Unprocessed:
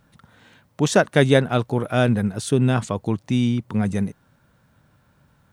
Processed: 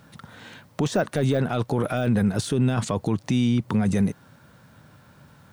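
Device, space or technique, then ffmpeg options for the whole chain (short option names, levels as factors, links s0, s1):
broadcast voice chain: -af "highpass=82,deesser=0.75,acompressor=threshold=0.0708:ratio=3,equalizer=f=4700:t=o:w=0.77:g=2,alimiter=limit=0.0794:level=0:latency=1:release=11,volume=2.51"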